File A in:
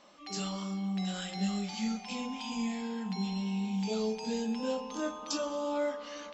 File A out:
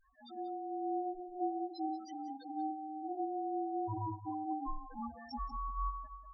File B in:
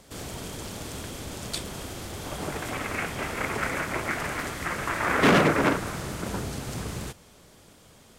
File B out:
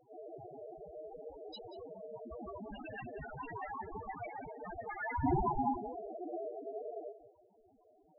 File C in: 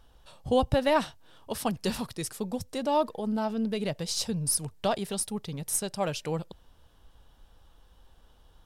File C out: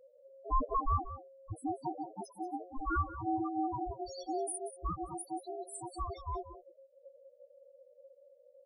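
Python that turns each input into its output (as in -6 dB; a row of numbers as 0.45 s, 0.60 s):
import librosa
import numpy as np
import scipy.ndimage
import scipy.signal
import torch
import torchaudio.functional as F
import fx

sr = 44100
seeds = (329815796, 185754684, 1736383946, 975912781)

y = x * np.sin(2.0 * np.pi * 540.0 * np.arange(len(x)) / sr)
y = fx.spec_topn(y, sr, count=2)
y = y + 10.0 ** (-14.0 / 20.0) * np.pad(y, (int(186 * sr / 1000.0), 0))[:len(y)]
y = y * 10.0 ** (3.5 / 20.0)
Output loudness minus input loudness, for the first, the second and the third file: -5.5 LU, -13.0 LU, -8.0 LU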